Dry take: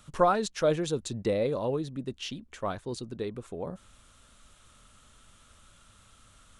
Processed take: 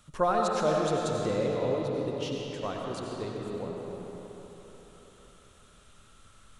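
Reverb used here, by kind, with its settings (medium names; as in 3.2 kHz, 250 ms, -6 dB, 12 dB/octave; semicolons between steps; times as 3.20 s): algorithmic reverb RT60 4.1 s, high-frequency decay 0.7×, pre-delay 50 ms, DRR -1.5 dB; trim -3.5 dB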